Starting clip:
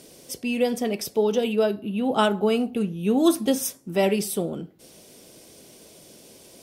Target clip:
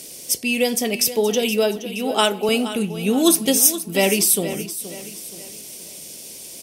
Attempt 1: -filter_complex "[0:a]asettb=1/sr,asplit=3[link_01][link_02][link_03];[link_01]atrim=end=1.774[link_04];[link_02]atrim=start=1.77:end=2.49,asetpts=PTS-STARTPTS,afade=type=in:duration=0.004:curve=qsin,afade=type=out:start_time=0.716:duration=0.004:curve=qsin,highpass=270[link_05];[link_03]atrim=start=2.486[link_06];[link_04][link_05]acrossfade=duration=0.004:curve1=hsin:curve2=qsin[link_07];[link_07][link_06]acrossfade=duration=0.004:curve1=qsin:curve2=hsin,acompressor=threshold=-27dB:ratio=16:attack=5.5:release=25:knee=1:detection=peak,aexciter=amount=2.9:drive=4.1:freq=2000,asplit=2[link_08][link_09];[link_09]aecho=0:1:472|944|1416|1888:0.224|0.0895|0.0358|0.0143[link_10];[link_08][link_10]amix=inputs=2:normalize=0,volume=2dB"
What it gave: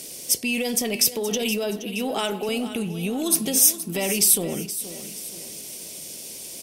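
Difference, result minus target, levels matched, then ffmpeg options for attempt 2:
downward compressor: peak gain reduction +14 dB
-filter_complex "[0:a]asettb=1/sr,asplit=3[link_01][link_02][link_03];[link_01]atrim=end=1.774[link_04];[link_02]atrim=start=1.77:end=2.49,asetpts=PTS-STARTPTS,afade=type=in:duration=0.004:curve=qsin,afade=type=out:start_time=0.716:duration=0.004:curve=qsin,highpass=270[link_05];[link_03]atrim=start=2.486[link_06];[link_04][link_05]acrossfade=duration=0.004:curve1=hsin:curve2=qsin[link_07];[link_07][link_06]acrossfade=duration=0.004:curve1=qsin:curve2=hsin,aexciter=amount=2.9:drive=4.1:freq=2000,asplit=2[link_08][link_09];[link_09]aecho=0:1:472|944|1416|1888:0.224|0.0895|0.0358|0.0143[link_10];[link_08][link_10]amix=inputs=2:normalize=0,volume=2dB"

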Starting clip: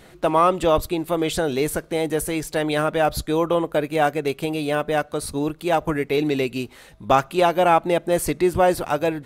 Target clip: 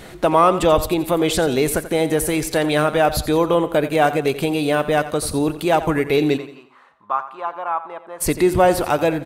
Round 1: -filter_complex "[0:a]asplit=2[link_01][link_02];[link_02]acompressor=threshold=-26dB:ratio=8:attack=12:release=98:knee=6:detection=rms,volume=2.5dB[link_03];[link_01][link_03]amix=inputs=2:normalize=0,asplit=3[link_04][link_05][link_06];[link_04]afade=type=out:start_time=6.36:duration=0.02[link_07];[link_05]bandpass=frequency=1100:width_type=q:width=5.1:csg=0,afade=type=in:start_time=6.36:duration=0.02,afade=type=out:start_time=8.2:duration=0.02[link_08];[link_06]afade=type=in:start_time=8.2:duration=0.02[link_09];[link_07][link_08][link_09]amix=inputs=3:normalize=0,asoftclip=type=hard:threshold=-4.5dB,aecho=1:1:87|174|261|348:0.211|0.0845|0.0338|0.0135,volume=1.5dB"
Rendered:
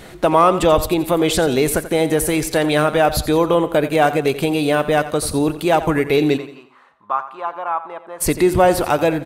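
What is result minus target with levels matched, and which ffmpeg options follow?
downward compressor: peak gain reduction −5.5 dB
-filter_complex "[0:a]asplit=2[link_01][link_02];[link_02]acompressor=threshold=-32.5dB:ratio=8:attack=12:release=98:knee=6:detection=rms,volume=2.5dB[link_03];[link_01][link_03]amix=inputs=2:normalize=0,asplit=3[link_04][link_05][link_06];[link_04]afade=type=out:start_time=6.36:duration=0.02[link_07];[link_05]bandpass=frequency=1100:width_type=q:width=5.1:csg=0,afade=type=in:start_time=6.36:duration=0.02,afade=type=out:start_time=8.2:duration=0.02[link_08];[link_06]afade=type=in:start_time=8.2:duration=0.02[link_09];[link_07][link_08][link_09]amix=inputs=3:normalize=0,asoftclip=type=hard:threshold=-4.5dB,aecho=1:1:87|174|261|348:0.211|0.0845|0.0338|0.0135,volume=1.5dB"

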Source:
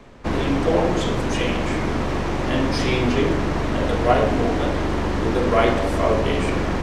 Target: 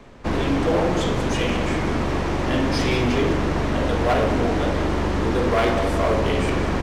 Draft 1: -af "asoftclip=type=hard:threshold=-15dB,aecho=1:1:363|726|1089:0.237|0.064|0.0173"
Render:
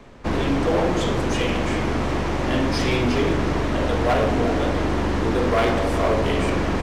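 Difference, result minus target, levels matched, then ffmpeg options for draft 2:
echo 170 ms late
-af "asoftclip=type=hard:threshold=-15dB,aecho=1:1:193|386|579:0.237|0.064|0.0173"

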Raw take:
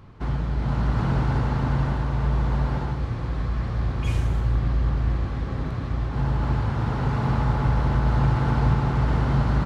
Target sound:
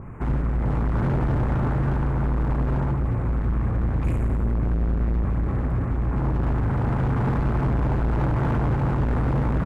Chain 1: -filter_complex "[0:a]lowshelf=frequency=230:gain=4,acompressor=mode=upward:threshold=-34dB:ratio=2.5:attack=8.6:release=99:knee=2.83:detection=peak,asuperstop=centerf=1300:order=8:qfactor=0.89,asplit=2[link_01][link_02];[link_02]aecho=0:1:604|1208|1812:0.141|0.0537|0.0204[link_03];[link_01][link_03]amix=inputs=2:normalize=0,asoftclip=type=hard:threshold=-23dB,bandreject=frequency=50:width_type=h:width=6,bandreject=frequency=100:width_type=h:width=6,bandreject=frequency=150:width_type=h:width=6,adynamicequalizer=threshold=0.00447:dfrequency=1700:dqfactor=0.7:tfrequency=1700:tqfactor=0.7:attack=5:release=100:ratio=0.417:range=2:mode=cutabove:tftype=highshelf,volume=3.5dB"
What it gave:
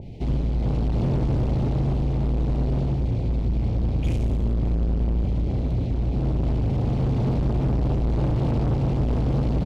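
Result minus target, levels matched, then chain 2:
1,000 Hz band −6.5 dB
-filter_complex "[0:a]lowshelf=frequency=230:gain=4,acompressor=mode=upward:threshold=-34dB:ratio=2.5:attack=8.6:release=99:knee=2.83:detection=peak,asuperstop=centerf=4300:order=8:qfactor=0.89,asplit=2[link_01][link_02];[link_02]aecho=0:1:604|1208|1812:0.141|0.0537|0.0204[link_03];[link_01][link_03]amix=inputs=2:normalize=0,asoftclip=type=hard:threshold=-23dB,bandreject=frequency=50:width_type=h:width=6,bandreject=frequency=100:width_type=h:width=6,bandreject=frequency=150:width_type=h:width=6,adynamicequalizer=threshold=0.00447:dfrequency=1700:dqfactor=0.7:tfrequency=1700:tqfactor=0.7:attack=5:release=100:ratio=0.417:range=2:mode=cutabove:tftype=highshelf,volume=3.5dB"

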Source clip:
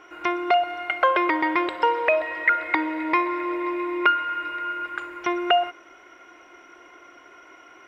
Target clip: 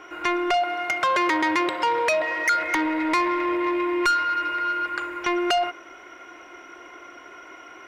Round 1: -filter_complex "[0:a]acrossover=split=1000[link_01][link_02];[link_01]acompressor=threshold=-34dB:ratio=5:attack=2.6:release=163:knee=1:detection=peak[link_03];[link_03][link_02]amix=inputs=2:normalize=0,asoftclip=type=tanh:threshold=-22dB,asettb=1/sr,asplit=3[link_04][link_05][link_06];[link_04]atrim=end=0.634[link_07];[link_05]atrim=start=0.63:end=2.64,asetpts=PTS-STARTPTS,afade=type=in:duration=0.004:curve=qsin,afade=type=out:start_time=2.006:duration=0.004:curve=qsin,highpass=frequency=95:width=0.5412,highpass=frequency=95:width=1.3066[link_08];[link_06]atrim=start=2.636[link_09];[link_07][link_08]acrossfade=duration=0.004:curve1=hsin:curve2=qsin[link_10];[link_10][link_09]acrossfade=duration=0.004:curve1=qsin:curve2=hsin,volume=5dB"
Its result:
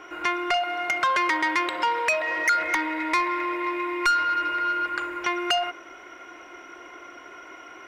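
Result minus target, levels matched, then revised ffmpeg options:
downward compressor: peak gain reduction +8.5 dB
-filter_complex "[0:a]acrossover=split=1000[link_01][link_02];[link_01]acompressor=threshold=-23.5dB:ratio=5:attack=2.6:release=163:knee=1:detection=peak[link_03];[link_03][link_02]amix=inputs=2:normalize=0,asoftclip=type=tanh:threshold=-22dB,asettb=1/sr,asplit=3[link_04][link_05][link_06];[link_04]atrim=end=0.634[link_07];[link_05]atrim=start=0.63:end=2.64,asetpts=PTS-STARTPTS,afade=type=in:duration=0.004:curve=qsin,afade=type=out:start_time=2.006:duration=0.004:curve=qsin,highpass=frequency=95:width=0.5412,highpass=frequency=95:width=1.3066[link_08];[link_06]atrim=start=2.636[link_09];[link_07][link_08]acrossfade=duration=0.004:curve1=hsin:curve2=qsin[link_10];[link_10][link_09]acrossfade=duration=0.004:curve1=qsin:curve2=hsin,volume=5dB"

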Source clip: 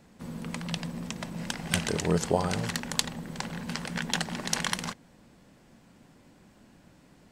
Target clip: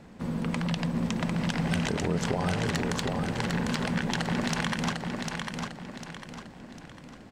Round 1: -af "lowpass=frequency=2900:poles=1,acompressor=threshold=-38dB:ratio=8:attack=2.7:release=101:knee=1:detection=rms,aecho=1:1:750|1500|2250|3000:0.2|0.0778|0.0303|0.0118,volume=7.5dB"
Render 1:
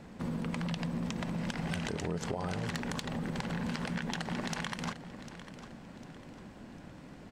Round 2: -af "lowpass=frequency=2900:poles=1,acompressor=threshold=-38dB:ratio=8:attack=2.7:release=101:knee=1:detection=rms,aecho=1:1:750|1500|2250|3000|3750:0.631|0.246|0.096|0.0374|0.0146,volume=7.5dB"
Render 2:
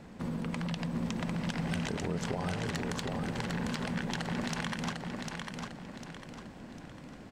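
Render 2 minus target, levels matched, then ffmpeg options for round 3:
downward compressor: peak gain reduction +6 dB
-af "lowpass=frequency=2900:poles=1,acompressor=threshold=-31dB:ratio=8:attack=2.7:release=101:knee=1:detection=rms,aecho=1:1:750|1500|2250|3000|3750:0.631|0.246|0.096|0.0374|0.0146,volume=7.5dB"

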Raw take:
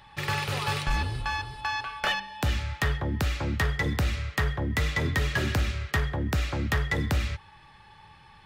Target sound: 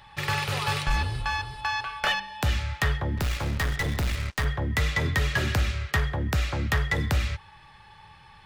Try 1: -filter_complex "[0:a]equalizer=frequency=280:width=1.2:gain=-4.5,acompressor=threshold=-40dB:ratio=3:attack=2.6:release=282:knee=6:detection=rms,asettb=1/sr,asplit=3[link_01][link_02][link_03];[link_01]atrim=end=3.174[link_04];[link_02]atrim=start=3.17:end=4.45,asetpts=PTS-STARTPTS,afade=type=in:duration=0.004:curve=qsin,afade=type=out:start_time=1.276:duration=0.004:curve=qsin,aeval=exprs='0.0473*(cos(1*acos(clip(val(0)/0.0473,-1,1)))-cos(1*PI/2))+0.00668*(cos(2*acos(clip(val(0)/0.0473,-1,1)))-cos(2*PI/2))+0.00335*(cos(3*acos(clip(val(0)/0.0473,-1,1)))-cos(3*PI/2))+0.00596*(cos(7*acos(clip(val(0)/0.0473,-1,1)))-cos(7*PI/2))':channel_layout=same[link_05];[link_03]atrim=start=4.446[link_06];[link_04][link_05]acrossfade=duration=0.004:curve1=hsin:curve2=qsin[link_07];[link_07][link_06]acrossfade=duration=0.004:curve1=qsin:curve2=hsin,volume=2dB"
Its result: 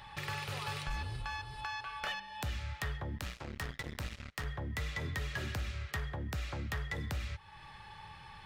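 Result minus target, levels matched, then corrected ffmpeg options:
downward compressor: peak gain reduction +14 dB
-filter_complex "[0:a]equalizer=frequency=280:width=1.2:gain=-4.5,asettb=1/sr,asplit=3[link_01][link_02][link_03];[link_01]atrim=end=3.174[link_04];[link_02]atrim=start=3.17:end=4.45,asetpts=PTS-STARTPTS,afade=type=in:duration=0.004:curve=qsin,afade=type=out:start_time=1.276:duration=0.004:curve=qsin,aeval=exprs='0.0473*(cos(1*acos(clip(val(0)/0.0473,-1,1)))-cos(1*PI/2))+0.00668*(cos(2*acos(clip(val(0)/0.0473,-1,1)))-cos(2*PI/2))+0.00335*(cos(3*acos(clip(val(0)/0.0473,-1,1)))-cos(3*PI/2))+0.00596*(cos(7*acos(clip(val(0)/0.0473,-1,1)))-cos(7*PI/2))':channel_layout=same[link_05];[link_03]atrim=start=4.446[link_06];[link_04][link_05]acrossfade=duration=0.004:curve1=hsin:curve2=qsin[link_07];[link_07][link_06]acrossfade=duration=0.004:curve1=qsin:curve2=hsin,volume=2dB"

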